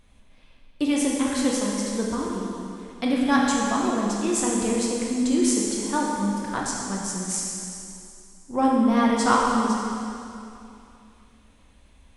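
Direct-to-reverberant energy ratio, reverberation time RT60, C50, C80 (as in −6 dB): −3.5 dB, 2.7 s, −0.5 dB, 1.0 dB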